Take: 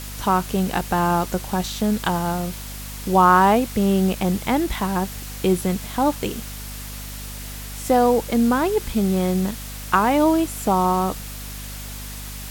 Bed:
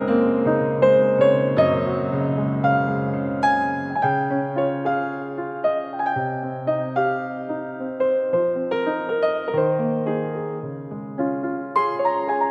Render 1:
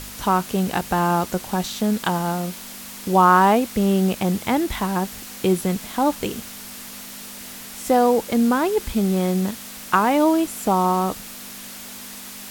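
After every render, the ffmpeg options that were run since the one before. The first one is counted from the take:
-af "bandreject=f=50:t=h:w=4,bandreject=f=100:t=h:w=4,bandreject=f=150:t=h:w=4"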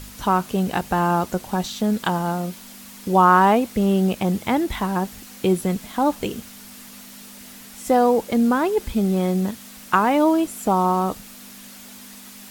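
-af "afftdn=nr=6:nf=-37"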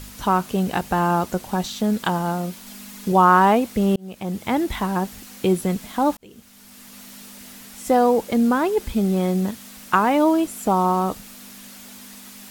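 -filter_complex "[0:a]asettb=1/sr,asplit=3[a][b][c];[a]atrim=end=2.664[d];[b]atrim=start=2.66:end=3.12,asetpts=PTS-STARTPTS,afade=t=in:d=0.004:c=qsin,afade=t=out:st=0.456:d=0.004:c=qsin,aecho=1:1:4.8:0.65,atrim=end_sample=20286[e];[c]atrim=start=3.116[f];[d][e]acrossfade=d=0.004:c1=hsin:c2=qsin[g];[g][f]acrossfade=d=0.004:c1=qsin:c2=hsin,asplit=3[h][i][j];[h]atrim=end=3.96,asetpts=PTS-STARTPTS,afade=t=out:st=3.956:d=0.004:c=hsin[k];[i]atrim=start=3.96:end=6.17,asetpts=PTS-STARTPTS,afade=t=in:d=0.65,afade=t=out:st=2.206:d=0.004:c=hsin[l];[j]atrim=start=6.17,asetpts=PTS-STARTPTS,afade=t=in:d=0.9[m];[k][l][m]concat=n=3:v=0:a=1"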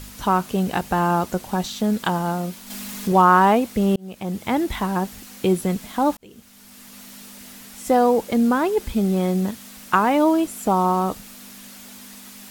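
-filter_complex "[0:a]asettb=1/sr,asplit=3[a][b][c];[a]atrim=end=2.704[d];[b]atrim=start=2.7:end=3.22,asetpts=PTS-STARTPTS,afade=t=in:d=0.004:c=qsin,afade=t=out:st=0.516:d=0.004:c=qsin,aeval=exprs='val(0)+0.5*0.0237*sgn(val(0))':c=same[e];[c]atrim=start=3.216[f];[d][e]acrossfade=d=0.004:c1=hsin:c2=qsin[g];[g][f]acrossfade=d=0.004:c1=qsin:c2=hsin"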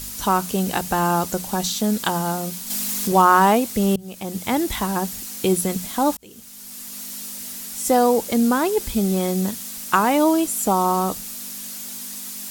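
-af "bass=f=250:g=0,treble=f=4k:g=11,bandreject=f=60:t=h:w=6,bandreject=f=120:t=h:w=6,bandreject=f=180:t=h:w=6"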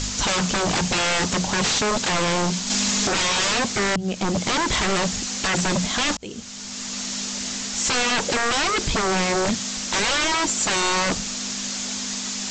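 -af "apsyclip=10.5dB,aresample=16000,aeval=exprs='0.15*(abs(mod(val(0)/0.15+3,4)-2)-1)':c=same,aresample=44100"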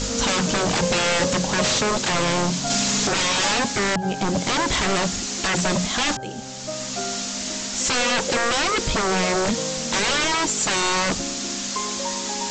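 -filter_complex "[1:a]volume=-10.5dB[a];[0:a][a]amix=inputs=2:normalize=0"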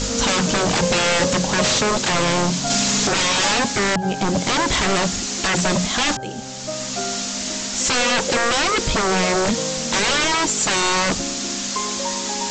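-af "volume=2.5dB"

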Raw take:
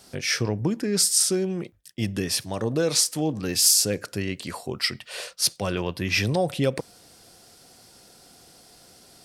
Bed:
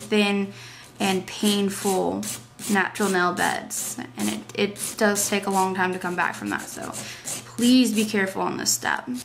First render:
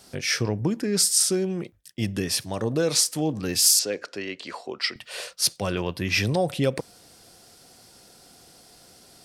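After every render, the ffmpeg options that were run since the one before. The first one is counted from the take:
-filter_complex "[0:a]asettb=1/sr,asplit=3[a][b][c];[a]atrim=end=3.794[d];[b]atrim=start=3.79:end=4.96,asetpts=PTS-STARTPTS,afade=t=in:d=0.004:c=qsin,afade=t=out:st=1.166:d=0.004:c=qsin,acrossover=split=270 6500:gain=0.0891 1 0.0631[e][f][g];[e][f][g]amix=inputs=3:normalize=0[h];[c]atrim=start=4.956[i];[d][h]acrossfade=d=0.004:c1=hsin:c2=qsin[j];[j][i]acrossfade=d=0.004:c1=qsin:c2=hsin"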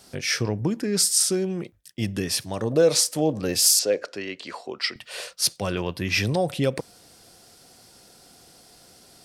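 -filter_complex "[0:a]asettb=1/sr,asplit=3[a][b][c];[a]atrim=end=2.714[d];[b]atrim=start=2.71:end=4.13,asetpts=PTS-STARTPTS,afade=t=in:d=0.004:c=qsin,afade=t=out:st=1.416:d=0.004:c=qsin,equalizer=f=560:w=2:g=9[e];[c]atrim=start=4.126[f];[d][e]acrossfade=d=0.004:c1=hsin:c2=qsin[g];[g][f]acrossfade=d=0.004:c1=qsin:c2=hsin"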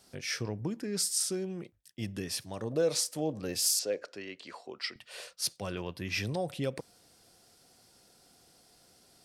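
-af "volume=-10dB"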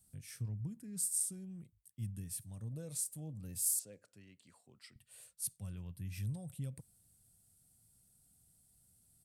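-af "firequalizer=gain_entry='entry(110,0);entry(360,-24);entry(3600,-20);entry(5200,-22);entry(8300,-2)':delay=0.05:min_phase=1"

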